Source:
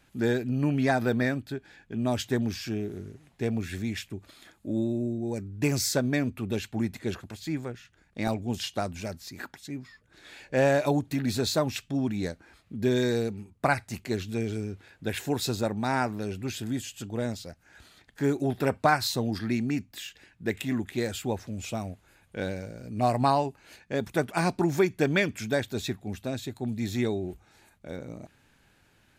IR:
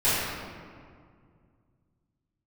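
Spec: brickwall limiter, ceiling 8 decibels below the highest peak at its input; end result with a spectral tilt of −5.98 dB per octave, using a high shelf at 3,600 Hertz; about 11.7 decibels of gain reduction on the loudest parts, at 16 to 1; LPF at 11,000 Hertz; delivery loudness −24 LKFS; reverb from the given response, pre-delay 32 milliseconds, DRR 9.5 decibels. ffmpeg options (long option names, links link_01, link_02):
-filter_complex "[0:a]lowpass=11000,highshelf=frequency=3600:gain=-8.5,acompressor=threshold=-29dB:ratio=16,alimiter=level_in=2dB:limit=-24dB:level=0:latency=1,volume=-2dB,asplit=2[link_01][link_02];[1:a]atrim=start_sample=2205,adelay=32[link_03];[link_02][link_03]afir=irnorm=-1:irlink=0,volume=-25.5dB[link_04];[link_01][link_04]amix=inputs=2:normalize=0,volume=12.5dB"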